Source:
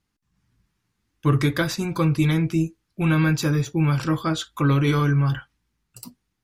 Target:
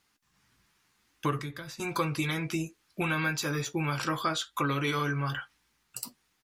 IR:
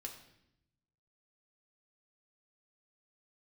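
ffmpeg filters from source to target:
-filter_complex "[0:a]tiltshelf=frequency=1100:gain=-8.5,asplit=2[link_01][link_02];[link_02]adelay=14,volume=-11.5dB[link_03];[link_01][link_03]amix=inputs=2:normalize=0,acompressor=threshold=-36dB:ratio=3,equalizer=frequency=600:width=0.36:gain=9.5,asettb=1/sr,asplit=3[link_04][link_05][link_06];[link_04]atrim=end=1.394[link_07];[link_05]atrim=start=1.39:end=1.8,asetpts=PTS-STARTPTS,afade=type=in:duration=0.004:curve=qsin,afade=type=out:start_time=0.406:duration=0.004:curve=qsin,acrossover=split=200[link_08][link_09];[link_09]acompressor=threshold=-45dB:ratio=3[link_10];[link_08][link_10]amix=inputs=2:normalize=0[link_11];[link_06]atrim=start=1.796[link_12];[link_07][link_11]acrossfade=duration=0.004:curve1=hsin:curve2=qsin[link_13];[link_13][link_12]acrossfade=duration=0.004:curve1=qsin:curve2=hsin"

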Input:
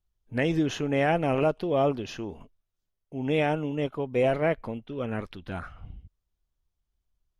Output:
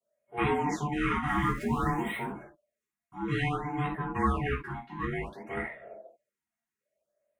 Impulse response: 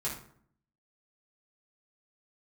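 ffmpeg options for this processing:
-filter_complex "[0:a]asettb=1/sr,asplit=3[link_01][link_02][link_03];[link_01]atrim=end=1.284[link_04];[link_02]atrim=start=1.28:end=2.25,asetpts=PTS-STARTPTS,afade=type=in:duration=0.004:curve=qsin,afade=type=out:start_time=0.966:duration=0.004:curve=qsin,aeval=exprs='val(0)+0.5*0.0133*sgn(val(0))':channel_layout=same[link_05];[link_03]atrim=start=2.246[link_06];[link_04][link_05]acrossfade=duration=0.004:curve1=hsin:curve2=qsin[link_07];[link_07][link_06]acrossfade=duration=0.004:curve1=qsin:curve2=hsin,acrossover=split=120|400|2500[link_08][link_09][link_10][link_11];[link_10]alimiter=limit=-24dB:level=0:latency=1[link_12];[link_08][link_09][link_12][link_11]amix=inputs=4:normalize=0,aeval=exprs='val(0)*sin(2*PI*590*n/s)':channel_layout=same,equalizer=frequency=125:width_type=o:width=1:gain=-5,equalizer=frequency=250:width_type=o:width=1:gain=6,equalizer=frequency=500:width_type=o:width=1:gain=-3,equalizer=frequency=1000:width_type=o:width=1:gain=-4,equalizer=frequency=2000:width_type=o:width=1:gain=11,equalizer=frequency=4000:width_type=o:width=1:gain=-9,equalizer=frequency=8000:width_type=o:width=1:gain=6[link_13];[1:a]atrim=start_sample=2205,atrim=end_sample=3969[link_14];[link_13][link_14]afir=irnorm=-1:irlink=0,afftfilt=real='re*(1-between(b*sr/1024,470*pow(5800/470,0.5+0.5*sin(2*PI*0.57*pts/sr))/1.41,470*pow(5800/470,0.5+0.5*sin(2*PI*0.57*pts/sr))*1.41))':imag='im*(1-between(b*sr/1024,470*pow(5800/470,0.5+0.5*sin(2*PI*0.57*pts/sr))/1.41,470*pow(5800/470,0.5+0.5*sin(2*PI*0.57*pts/sr))*1.41))':win_size=1024:overlap=0.75,volume=-2.5dB"

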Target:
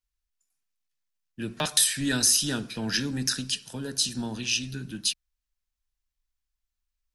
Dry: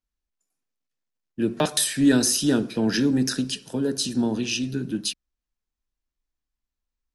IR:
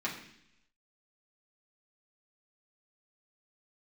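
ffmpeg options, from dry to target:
-af "equalizer=frequency=360:width=0.51:gain=-14.5,volume=2dB"

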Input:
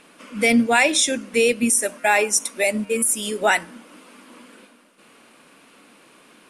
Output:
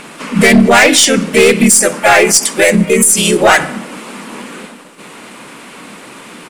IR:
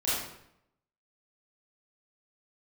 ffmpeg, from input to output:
-filter_complex "[0:a]asplit=2[link_01][link_02];[1:a]atrim=start_sample=2205,lowpass=5500[link_03];[link_02][link_03]afir=irnorm=-1:irlink=0,volume=-29dB[link_04];[link_01][link_04]amix=inputs=2:normalize=0,aeval=exprs='0.631*(cos(1*acos(clip(val(0)/0.631,-1,1)))-cos(1*PI/2))+0.0708*(cos(2*acos(clip(val(0)/0.631,-1,1)))-cos(2*PI/2))':channel_layout=same,asplit=3[link_05][link_06][link_07];[link_06]asetrate=37084,aresample=44100,atempo=1.18921,volume=-1dB[link_08];[link_07]asetrate=58866,aresample=44100,atempo=0.749154,volume=-18dB[link_09];[link_05][link_08][link_09]amix=inputs=3:normalize=0,asoftclip=type=hard:threshold=-11dB,alimiter=level_in=16.5dB:limit=-1dB:release=50:level=0:latency=1,volume=-1dB"

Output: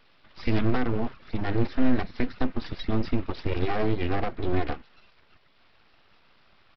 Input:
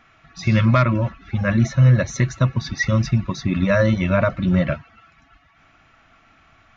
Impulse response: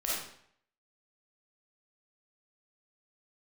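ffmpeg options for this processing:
-filter_complex "[0:a]acrossover=split=480[link_01][link_02];[link_02]acompressor=threshold=-31dB:ratio=2.5[link_03];[link_01][link_03]amix=inputs=2:normalize=0,aresample=11025,aeval=exprs='abs(val(0))':channel_layout=same,aresample=44100,volume=-4dB"

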